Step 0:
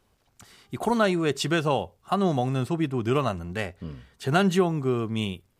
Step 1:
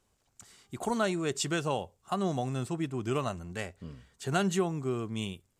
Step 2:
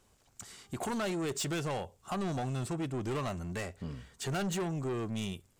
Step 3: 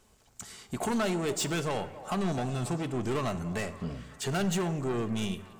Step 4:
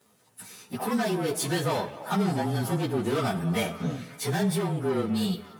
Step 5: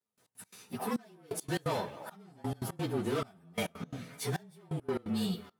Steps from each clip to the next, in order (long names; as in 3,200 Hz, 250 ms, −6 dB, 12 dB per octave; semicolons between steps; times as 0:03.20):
parametric band 7,400 Hz +10 dB 0.69 octaves; level −7 dB
in parallel at 0 dB: downward compressor, threshold −38 dBFS, peak gain reduction 14 dB; on the sum: soft clipping −30.5 dBFS, distortion −8 dB
echo through a band-pass that steps 277 ms, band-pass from 700 Hz, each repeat 0.7 octaves, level −12 dB; on a send at −9.5 dB: convolution reverb RT60 1.3 s, pre-delay 5 ms; on the sum: level +3.5 dB
partials spread apart or drawn together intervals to 109%; high-pass filter 120 Hz 24 dB per octave; speech leveller within 3 dB 0.5 s; level +7 dB
gate pattern "..x.x.xxxxx.." 172 BPM −24 dB; level −5.5 dB